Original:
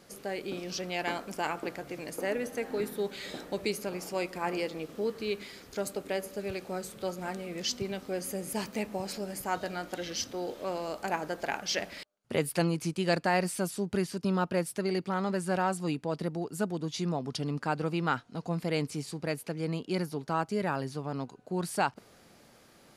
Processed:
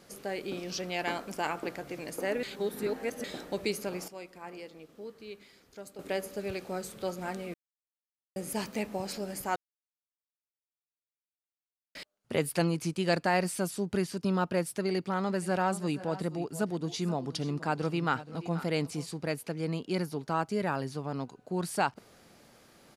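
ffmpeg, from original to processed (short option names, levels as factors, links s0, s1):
-filter_complex "[0:a]asplit=3[s0][s1][s2];[s0]afade=t=out:st=15.4:d=0.02[s3];[s1]aecho=1:1:475|495:0.133|0.133,afade=t=in:st=15.4:d=0.02,afade=t=out:st=19.05:d=0.02[s4];[s2]afade=t=in:st=19.05:d=0.02[s5];[s3][s4][s5]amix=inputs=3:normalize=0,asplit=9[s6][s7][s8][s9][s10][s11][s12][s13][s14];[s6]atrim=end=2.432[s15];[s7]atrim=start=2.428:end=3.242,asetpts=PTS-STARTPTS,areverse[s16];[s8]atrim=start=3.238:end=4.082[s17];[s9]atrim=start=4.078:end=5.992,asetpts=PTS-STARTPTS,volume=0.251[s18];[s10]atrim=start=5.988:end=7.54,asetpts=PTS-STARTPTS,afade=t=out:st=1.548:d=0.004:c=hsin[s19];[s11]atrim=start=7.54:end=8.36,asetpts=PTS-STARTPTS,volume=0[s20];[s12]atrim=start=8.36:end=9.56,asetpts=PTS-STARTPTS,afade=t=in:d=0.004:c=hsin,afade=t=out:st=1.196:d=0.004:c=hsin[s21];[s13]atrim=start=9.56:end=11.95,asetpts=PTS-STARTPTS,volume=0[s22];[s14]atrim=start=11.95,asetpts=PTS-STARTPTS,afade=t=in:d=0.004:c=hsin[s23];[s15][s16]acrossfade=d=0.004:c1=hsin:c2=hsin[s24];[s24][s17]acrossfade=d=0.004:c1=hsin:c2=hsin[s25];[s25][s18]acrossfade=d=0.004:c1=hsin:c2=hsin[s26];[s19][s20][s21][s22][s23]concat=n=5:v=0:a=1[s27];[s26][s27]acrossfade=d=0.004:c1=hsin:c2=hsin"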